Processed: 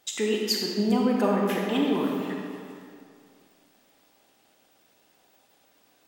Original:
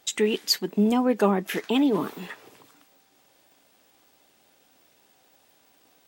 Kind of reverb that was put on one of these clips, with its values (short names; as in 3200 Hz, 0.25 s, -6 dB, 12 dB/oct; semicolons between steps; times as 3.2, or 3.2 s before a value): digital reverb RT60 2.3 s, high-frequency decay 0.7×, pre-delay 0 ms, DRR -1 dB; gain -4.5 dB